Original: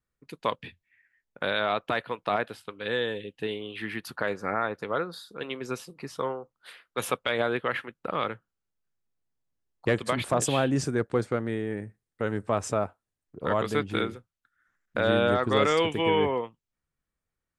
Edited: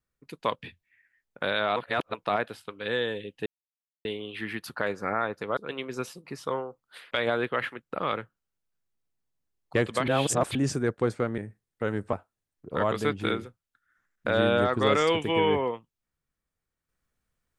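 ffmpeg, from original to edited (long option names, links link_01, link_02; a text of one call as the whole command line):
ffmpeg -i in.wav -filter_complex "[0:a]asplit=10[link_01][link_02][link_03][link_04][link_05][link_06][link_07][link_08][link_09][link_10];[link_01]atrim=end=1.762[link_11];[link_02]atrim=start=1.758:end=2.142,asetpts=PTS-STARTPTS,areverse[link_12];[link_03]atrim=start=2.138:end=3.46,asetpts=PTS-STARTPTS,afade=type=out:start_time=1.318:duration=0.004:curve=hsin,apad=pad_dur=0.59[link_13];[link_04]atrim=start=3.46:end=4.982,asetpts=PTS-STARTPTS,afade=type=in:duration=0.004:curve=hsin[link_14];[link_05]atrim=start=5.288:end=6.832[link_15];[link_06]atrim=start=7.228:end=10.202[link_16];[link_07]atrim=start=10.198:end=10.672,asetpts=PTS-STARTPTS,areverse[link_17];[link_08]atrim=start=10.668:end=11.502[link_18];[link_09]atrim=start=11.768:end=12.522[link_19];[link_10]atrim=start=12.828[link_20];[link_11][link_12]acrossfade=duration=0.004:curve1=hsin:curve2=hsin[link_21];[link_13][link_14]concat=n=2:v=0:a=1[link_22];[link_21][link_22]acrossfade=duration=0.004:curve1=hsin:curve2=hsin[link_23];[link_23][link_15]acrossfade=duration=0.004:curve1=hsin:curve2=hsin[link_24];[link_24][link_16]acrossfade=duration=0.004:curve1=hsin:curve2=hsin[link_25];[link_25][link_17]acrossfade=duration=0.004:curve1=hsin:curve2=hsin[link_26];[link_26][link_18]acrossfade=duration=0.004:curve1=hsin:curve2=hsin[link_27];[link_27][link_19]acrossfade=duration=0.004:curve1=hsin:curve2=hsin[link_28];[link_28][link_20]acrossfade=duration=0.004:curve1=hsin:curve2=hsin" out.wav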